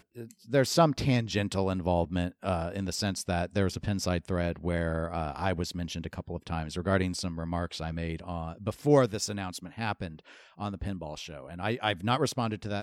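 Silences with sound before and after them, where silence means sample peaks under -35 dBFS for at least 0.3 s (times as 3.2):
10.12–10.6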